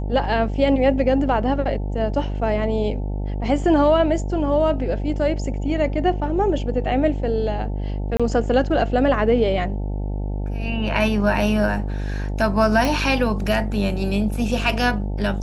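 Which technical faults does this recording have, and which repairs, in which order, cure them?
mains buzz 50 Hz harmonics 18 −25 dBFS
0:08.17–0:08.20: drop-out 26 ms
0:12.85: click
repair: click removal
hum removal 50 Hz, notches 18
repair the gap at 0:08.17, 26 ms

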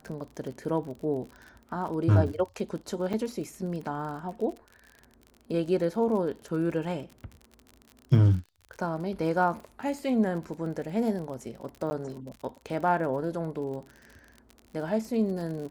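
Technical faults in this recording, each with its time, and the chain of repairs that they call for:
surface crackle 45 per second −37 dBFS
0:03.13–0:03.14: drop-out 5.7 ms
0:11.90–0:11.91: drop-out 10 ms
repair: click removal
repair the gap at 0:03.13, 5.7 ms
repair the gap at 0:11.90, 10 ms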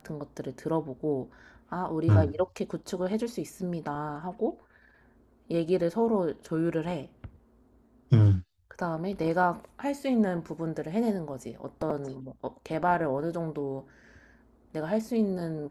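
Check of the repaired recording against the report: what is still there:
none of them is left

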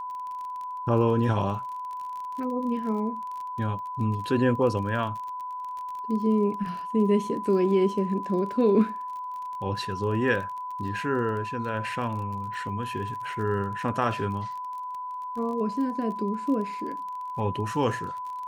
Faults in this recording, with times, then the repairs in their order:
surface crackle 30 per second −35 dBFS
whistle 1,000 Hz −32 dBFS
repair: click removal
notch filter 1,000 Hz, Q 30

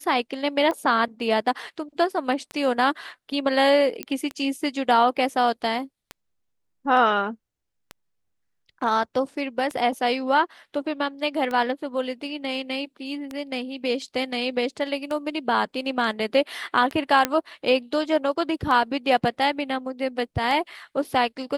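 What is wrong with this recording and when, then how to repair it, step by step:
scratch tick 33 1/3 rpm −17 dBFS
0:04.03: click −12 dBFS
0:17.25: click −5 dBFS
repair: click removal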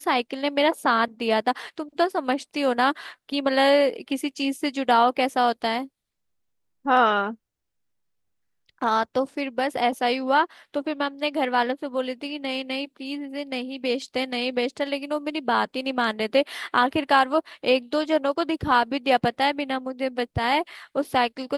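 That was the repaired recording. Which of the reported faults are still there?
none of them is left

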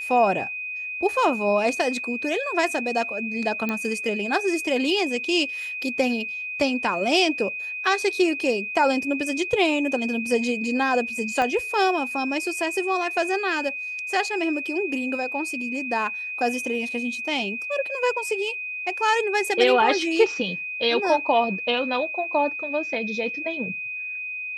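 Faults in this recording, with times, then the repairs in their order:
whistle 2,500 Hz −29 dBFS
0:03.69: click −13 dBFS
0:11.42: click −13 dBFS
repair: click removal
notch filter 2,500 Hz, Q 30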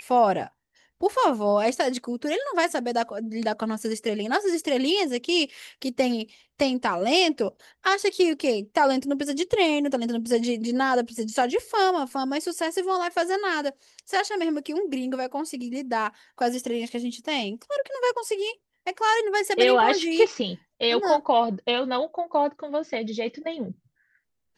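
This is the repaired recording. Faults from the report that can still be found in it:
0:03.69: click
0:11.42: click

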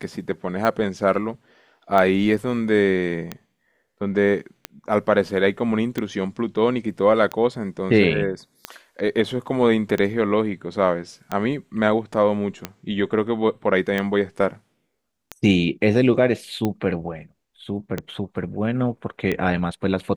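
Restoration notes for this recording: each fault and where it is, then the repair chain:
scratch tick 45 rpm −11 dBFS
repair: click removal

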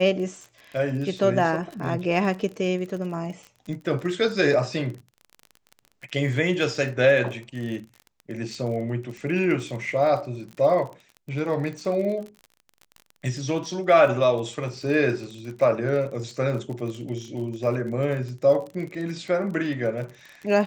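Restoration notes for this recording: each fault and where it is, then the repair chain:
surface crackle 38 per second −33 dBFS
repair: click removal

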